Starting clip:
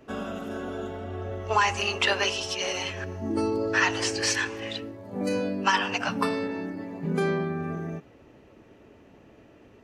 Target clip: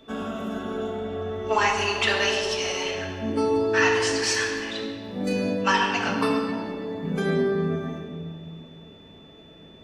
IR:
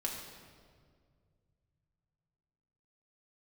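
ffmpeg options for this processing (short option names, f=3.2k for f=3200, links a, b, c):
-filter_complex "[0:a]aeval=exprs='val(0)+0.00251*sin(2*PI*3500*n/s)':c=same[a];[1:a]atrim=start_sample=2205[b];[a][b]afir=irnorm=-1:irlink=0"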